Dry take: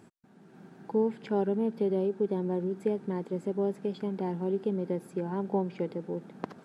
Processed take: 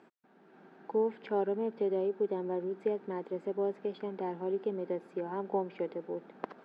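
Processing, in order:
band-pass filter 350–3,100 Hz

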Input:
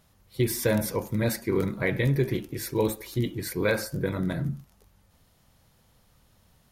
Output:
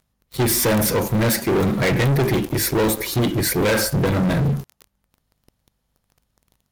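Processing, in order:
mains hum 50 Hz, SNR 34 dB
leveller curve on the samples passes 5
level −2 dB

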